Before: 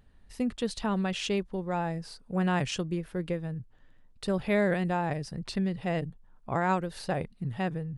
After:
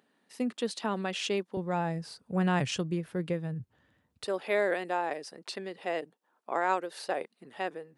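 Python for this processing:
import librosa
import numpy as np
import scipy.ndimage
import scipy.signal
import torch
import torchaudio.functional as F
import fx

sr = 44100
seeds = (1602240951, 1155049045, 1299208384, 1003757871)

y = fx.highpass(x, sr, hz=fx.steps((0.0, 230.0), (1.57, 76.0), (4.25, 330.0)), slope=24)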